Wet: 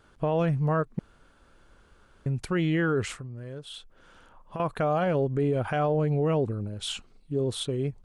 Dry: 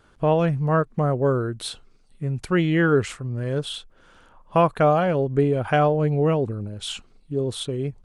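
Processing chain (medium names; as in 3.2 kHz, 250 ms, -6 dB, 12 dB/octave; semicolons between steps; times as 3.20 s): 3.18–4.60 s: compression 6:1, threshold -35 dBFS, peak gain reduction 19 dB; peak limiter -16 dBFS, peak gain reduction 9 dB; 0.99–2.26 s: room tone; trim -2 dB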